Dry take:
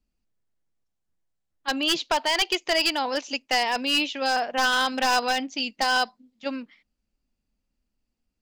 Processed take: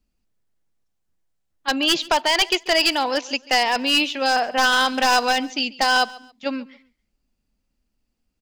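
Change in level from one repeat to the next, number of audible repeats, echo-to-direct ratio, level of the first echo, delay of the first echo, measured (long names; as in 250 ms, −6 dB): −11.0 dB, 2, −20.5 dB, −21.0 dB, 138 ms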